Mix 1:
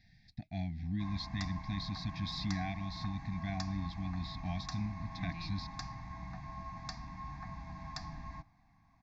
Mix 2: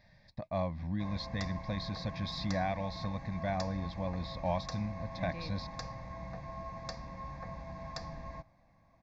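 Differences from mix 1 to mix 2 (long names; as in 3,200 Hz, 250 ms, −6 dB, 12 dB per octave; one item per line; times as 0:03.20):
speech: remove Butterworth band-reject 1,100 Hz, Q 0.95
master: remove elliptic band-stop filter 300–740 Hz, stop band 40 dB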